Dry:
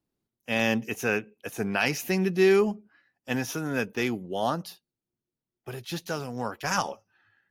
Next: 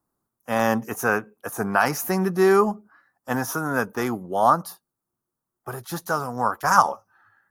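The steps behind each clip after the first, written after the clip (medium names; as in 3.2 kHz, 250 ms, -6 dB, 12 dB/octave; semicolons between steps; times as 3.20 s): FFT filter 440 Hz 0 dB, 1.2 kHz +13 dB, 2.6 kHz -12 dB, 9.9 kHz +7 dB; trim +2.5 dB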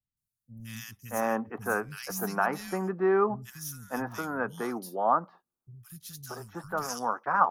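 three bands offset in time lows, highs, mids 170/630 ms, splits 160/2400 Hz; trim -6.5 dB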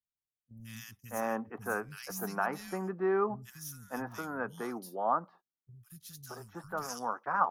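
gate -52 dBFS, range -10 dB; trim -5 dB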